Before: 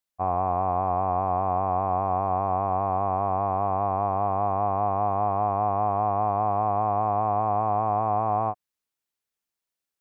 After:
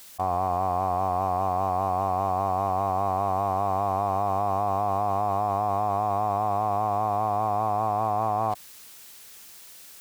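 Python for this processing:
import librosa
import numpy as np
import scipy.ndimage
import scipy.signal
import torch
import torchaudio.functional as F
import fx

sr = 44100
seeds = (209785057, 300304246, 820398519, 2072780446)

p1 = fx.high_shelf(x, sr, hz=2300.0, db=6.5)
p2 = fx.quant_dither(p1, sr, seeds[0], bits=6, dither='none')
p3 = p1 + (p2 * librosa.db_to_amplitude(-10.0))
p4 = fx.env_flatten(p3, sr, amount_pct=100)
y = p4 * librosa.db_to_amplitude(-5.5)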